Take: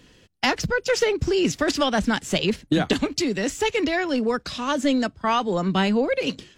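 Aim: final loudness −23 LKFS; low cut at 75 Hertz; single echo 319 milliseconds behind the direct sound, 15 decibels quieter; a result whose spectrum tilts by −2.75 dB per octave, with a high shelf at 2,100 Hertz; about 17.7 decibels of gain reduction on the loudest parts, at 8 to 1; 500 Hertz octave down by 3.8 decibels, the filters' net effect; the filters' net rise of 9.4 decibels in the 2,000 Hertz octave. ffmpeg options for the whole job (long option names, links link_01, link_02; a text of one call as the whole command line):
ffmpeg -i in.wav -af "highpass=75,equalizer=frequency=500:width_type=o:gain=-5.5,equalizer=frequency=2000:width_type=o:gain=8.5,highshelf=frequency=2100:gain=6.5,acompressor=threshold=-29dB:ratio=8,aecho=1:1:319:0.178,volume=8.5dB" out.wav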